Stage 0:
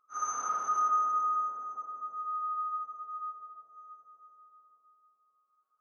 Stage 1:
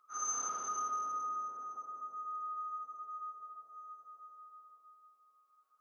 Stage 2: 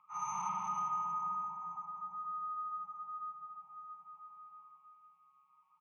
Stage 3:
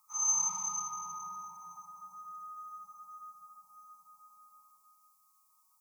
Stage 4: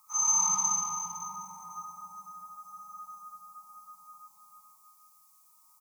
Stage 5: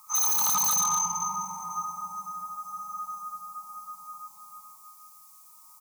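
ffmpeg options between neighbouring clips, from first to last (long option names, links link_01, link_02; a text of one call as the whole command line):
ffmpeg -i in.wav -filter_complex "[0:a]lowshelf=frequency=280:gain=-8,acrossover=split=460|3000[link_01][link_02][link_03];[link_02]acompressor=threshold=-56dB:ratio=2[link_04];[link_01][link_04][link_03]amix=inputs=3:normalize=0,volume=4.5dB" out.wav
ffmpeg -i in.wav -af "firequalizer=gain_entry='entry(110,0);entry(180,15);entry(260,-26);entry(380,-30);entry(630,-19);entry(890,15);entry(1500,-21);entry(2300,7);entry(4200,-20)':delay=0.05:min_phase=1,volume=6.5dB" out.wav
ffmpeg -i in.wav -af "aexciter=amount=15.1:drive=8.9:freq=4500,volume=-6dB" out.wav
ffmpeg -i in.wav -af "aecho=1:1:67.06|119.5:0.631|0.355,volume=6.5dB" out.wav
ffmpeg -i in.wav -af "aeval=exprs='0.0376*(abs(mod(val(0)/0.0376+3,4)-2)-1)':channel_layout=same,volume=9dB" out.wav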